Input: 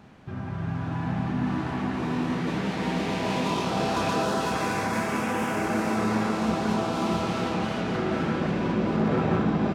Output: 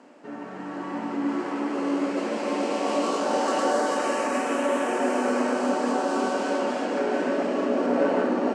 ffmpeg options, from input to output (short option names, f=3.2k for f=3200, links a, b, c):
-af "asetrate=50274,aresample=44100,highpass=f=270:w=0.5412,highpass=f=270:w=1.3066,equalizer=f=270:t=q:w=4:g=6,equalizer=f=580:t=q:w=4:g=10,equalizer=f=2k:t=q:w=4:g=-3,equalizer=f=3.6k:t=q:w=4:g=-9,equalizer=f=7.9k:t=q:w=4:g=5,lowpass=f=9.7k:w=0.5412,lowpass=f=9.7k:w=1.3066"